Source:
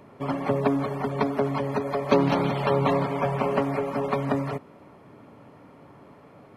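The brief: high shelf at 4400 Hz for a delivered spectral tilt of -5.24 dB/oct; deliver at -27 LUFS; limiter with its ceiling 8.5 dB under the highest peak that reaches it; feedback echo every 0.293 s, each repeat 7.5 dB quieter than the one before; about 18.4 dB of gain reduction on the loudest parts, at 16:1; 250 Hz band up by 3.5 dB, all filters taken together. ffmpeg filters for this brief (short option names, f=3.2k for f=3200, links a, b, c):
-af "equalizer=f=250:t=o:g=4,highshelf=f=4.4k:g=4.5,acompressor=threshold=-32dB:ratio=16,alimiter=level_in=4dB:limit=-24dB:level=0:latency=1,volume=-4dB,aecho=1:1:293|586|879|1172|1465:0.422|0.177|0.0744|0.0312|0.0131,volume=11dB"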